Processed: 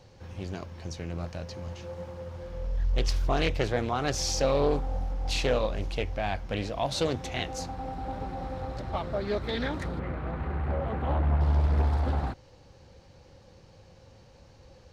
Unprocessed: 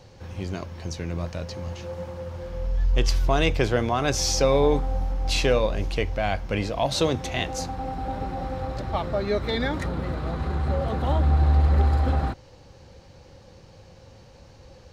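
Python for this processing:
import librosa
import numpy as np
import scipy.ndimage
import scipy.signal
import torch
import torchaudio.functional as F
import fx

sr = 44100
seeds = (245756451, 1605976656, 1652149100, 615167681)

y = fx.high_shelf_res(x, sr, hz=3300.0, db=-11.5, q=1.5, at=(9.99, 11.41))
y = fx.doppler_dist(y, sr, depth_ms=0.69)
y = y * 10.0 ** (-5.0 / 20.0)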